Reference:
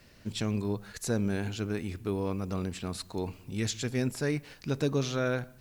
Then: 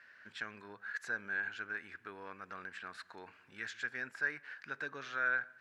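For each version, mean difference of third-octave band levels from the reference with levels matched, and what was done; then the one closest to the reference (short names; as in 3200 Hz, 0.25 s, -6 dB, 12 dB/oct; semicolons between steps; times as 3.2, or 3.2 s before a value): 10.0 dB: in parallel at -0.5 dB: compressor, threshold -37 dBFS, peak gain reduction 13.5 dB; on the sum: band-pass 1600 Hz, Q 7.2; gain +7 dB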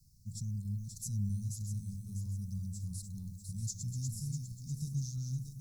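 16.5 dB: regenerating reverse delay 0.323 s, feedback 60%, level -5 dB; inverse Chebyshev band-stop 310–3200 Hz, stop band 40 dB; gain -3 dB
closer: first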